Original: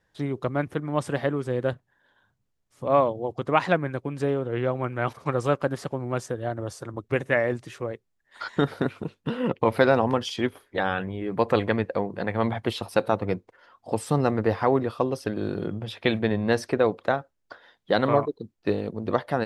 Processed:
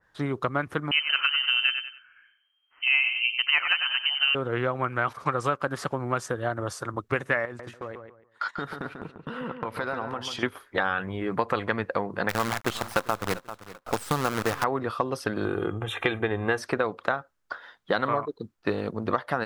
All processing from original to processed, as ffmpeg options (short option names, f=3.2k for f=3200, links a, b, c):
-filter_complex "[0:a]asettb=1/sr,asplit=3[a][b][c];[a]atrim=end=0.914[d];[b]atrim=start=0.91:end=4.35,asetpts=PTS-STARTPTS,afade=t=in:d=0.004:c=qsin,afade=t=out:st=3.436:d=0.004:c=qsin,lowpass=f=2.7k:t=q:w=0.5098,lowpass=f=2.7k:t=q:w=0.6013,lowpass=f=2.7k:t=q:w=0.9,lowpass=f=2.7k:t=q:w=2.563,afreqshift=-3200,aecho=1:1:94|188|282:0.316|0.0949|0.0285,atrim=end_sample=151704[e];[c]atrim=start=4.346[f];[d][e]acrossfade=d=0.004:c1=hsin:c2=qsin[g];[g][f]acrossfade=d=0.004:c1=qsin:c2=hsin,asettb=1/sr,asplit=3[h][i][j];[h]atrim=end=7.454[k];[i]atrim=start=7.45:end=10.43,asetpts=PTS-STARTPTS,afade=t=in:d=0.004:c=qsin,afade=t=out:st=2.976:d=0.004:c=qsin,agate=range=-19dB:threshold=-41dB:ratio=16:release=100:detection=peak,acompressor=threshold=-36dB:ratio=3:attack=3.2:release=140:knee=1:detection=peak,asplit=2[l][m];[m]adelay=142,lowpass=f=2.9k:p=1,volume=-7dB,asplit=2[n][o];[o]adelay=142,lowpass=f=2.9k:p=1,volume=0.26,asplit=2[p][q];[q]adelay=142,lowpass=f=2.9k:p=1,volume=0.26[r];[l][n][p][r]amix=inputs=4:normalize=0,atrim=end_sample=131418[s];[j]atrim=start=10.426[t];[k][s]acrossfade=d=0.004:c1=hsin:c2=qsin[u];[u][t]acrossfade=d=0.004:c1=qsin:c2=hsin,asettb=1/sr,asplit=3[v][w][x];[v]atrim=end=12.294[y];[w]atrim=start=12.29:end=14.64,asetpts=PTS-STARTPTS,afade=t=in:d=0.004:c=qsin,afade=t=out:st=2.346:d=0.004:c=qsin,acrusher=bits=5:dc=4:mix=0:aa=0.000001,aecho=1:1:391|782:0.0944|0.0227,atrim=end_sample=103635[z];[x]atrim=start=14.636[aa];[y][z]acrossfade=d=0.004:c1=hsin:c2=qsin[ab];[ab][aa]acrossfade=d=0.004:c1=qsin:c2=hsin,asettb=1/sr,asplit=3[ac][ad][ae];[ac]atrim=end=15.454[af];[ad]atrim=start=15.45:end=16.58,asetpts=PTS-STARTPTS,afade=t=in:d=0.004:c=qsin,afade=t=out:st=1.126:d=0.004:c=qsin,aecho=1:1:2.5:0.55,atrim=end_sample=49833,acompressor=mode=upward:threshold=-27dB:ratio=2.5:attack=3.2:release=140:knee=2.83:detection=peak,asuperstop=centerf=4800:order=4:qfactor=1.7[ag];[ae]atrim=start=16.576[ah];[af][ag]acrossfade=d=0.004:c1=hsin:c2=qsin[ai];[ai][ah]acrossfade=d=0.004:c1=qsin:c2=hsin,equalizer=f=1.3k:w=1.3:g=11,acompressor=threshold=-22dB:ratio=6,adynamicequalizer=threshold=0.01:dfrequency=2400:dqfactor=0.7:tfrequency=2400:tqfactor=0.7:attack=5:release=100:ratio=0.375:range=2:mode=boostabove:tftype=highshelf"